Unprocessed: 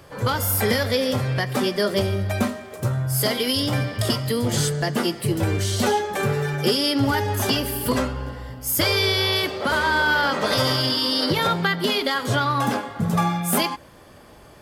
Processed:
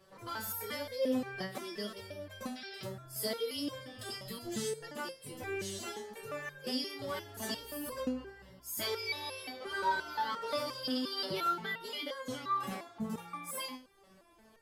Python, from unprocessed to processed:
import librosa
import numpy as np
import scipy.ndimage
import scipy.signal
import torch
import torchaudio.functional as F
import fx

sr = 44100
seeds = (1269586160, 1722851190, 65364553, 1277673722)

y = fx.spec_paint(x, sr, seeds[0], shape='noise', start_s=2.55, length_s=0.27, low_hz=1300.0, high_hz=5800.0, level_db=-32.0)
y = fx.resonator_held(y, sr, hz=5.7, low_hz=190.0, high_hz=530.0)
y = y * librosa.db_to_amplitude(-1.5)